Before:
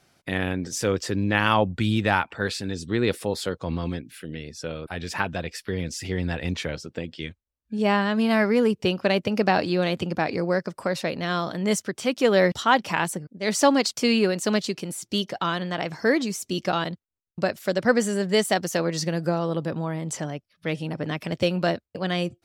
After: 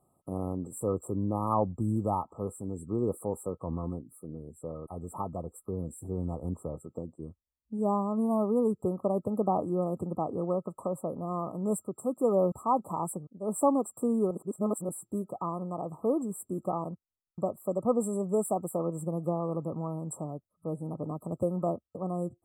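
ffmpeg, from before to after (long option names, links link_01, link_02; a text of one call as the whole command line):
ffmpeg -i in.wav -filter_complex "[0:a]asplit=3[link_01][link_02][link_03];[link_01]atrim=end=14.312[link_04];[link_02]atrim=start=14.308:end=14.892,asetpts=PTS-STARTPTS,areverse[link_05];[link_03]atrim=start=14.888[link_06];[link_04][link_05]acrossfade=duration=0.004:curve1=hsin:curve2=hsin[link_07];[link_07][link_06]acrossfade=duration=0.004:curve1=hsin:curve2=hsin,afftfilt=real='re*(1-between(b*sr/4096,1300,7400))':imag='im*(1-between(b*sr/4096,1300,7400))':win_size=4096:overlap=0.75,volume=-6dB" out.wav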